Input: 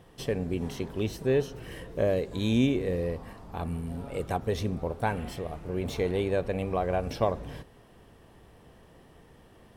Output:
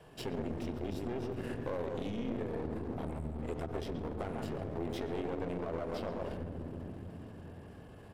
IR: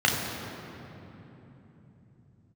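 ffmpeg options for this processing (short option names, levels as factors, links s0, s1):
-filter_complex "[0:a]alimiter=limit=0.0841:level=0:latency=1:release=79,asplit=2[s0][s1];[s1]adelay=157,lowpass=f=1700:p=1,volume=0.562,asplit=2[s2][s3];[s3]adelay=157,lowpass=f=1700:p=1,volume=0.25,asplit=2[s4][s5];[s5]adelay=157,lowpass=f=1700:p=1,volume=0.25[s6];[s0][s2][s4][s6]amix=inputs=4:normalize=0,asplit=2[s7][s8];[1:a]atrim=start_sample=2205,lowshelf=f=390:g=8[s9];[s8][s9]afir=irnorm=-1:irlink=0,volume=0.0531[s10];[s7][s10]amix=inputs=2:normalize=0,acompressor=threshold=0.0316:ratio=16,asetrate=40440,aresample=44100,atempo=1.09051,adynamicequalizer=threshold=0.002:dfrequency=270:dqfactor=3.1:tfrequency=270:tqfactor=3.1:attack=5:release=100:ratio=0.375:range=3.5:mode=boostabove:tftype=bell,aeval=exprs='clip(val(0),-1,0.00944)':c=same,atempo=1.2,bass=f=250:g=-6,treble=f=4000:g=-3,volume=1.12"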